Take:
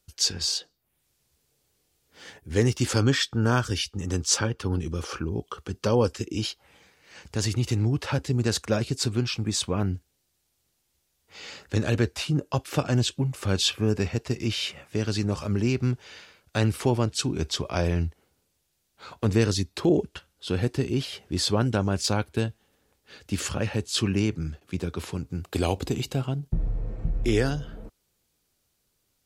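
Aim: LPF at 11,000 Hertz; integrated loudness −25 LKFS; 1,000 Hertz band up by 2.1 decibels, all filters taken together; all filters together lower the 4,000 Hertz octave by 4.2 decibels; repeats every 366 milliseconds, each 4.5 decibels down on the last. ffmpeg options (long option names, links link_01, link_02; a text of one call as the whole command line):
ffmpeg -i in.wav -af "lowpass=11000,equalizer=frequency=1000:width_type=o:gain=3,equalizer=frequency=4000:width_type=o:gain=-5.5,aecho=1:1:366|732|1098|1464|1830|2196|2562|2928|3294:0.596|0.357|0.214|0.129|0.0772|0.0463|0.0278|0.0167|0.01,volume=1dB" out.wav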